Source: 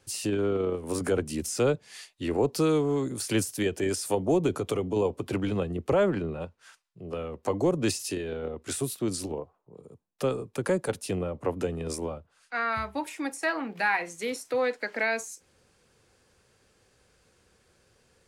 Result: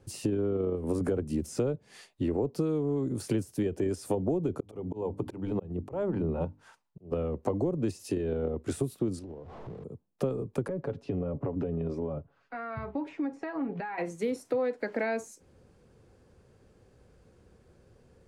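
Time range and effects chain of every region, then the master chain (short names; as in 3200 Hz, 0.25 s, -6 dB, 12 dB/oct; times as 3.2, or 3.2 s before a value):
4.6–7.12 bell 890 Hz +8 dB 0.33 oct + notches 50/100/150/200/250/300 Hz + auto swell 0.471 s
9.19–9.84 zero-crossing step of -42 dBFS + LPF 4700 Hz + compressor 12:1, threshold -45 dBFS
10.68–13.98 comb 7.2 ms, depth 53% + compressor 4:1, threshold -34 dBFS + air absorption 210 m
whole clip: tilt shelf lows +9 dB; compressor 6:1, threshold -26 dBFS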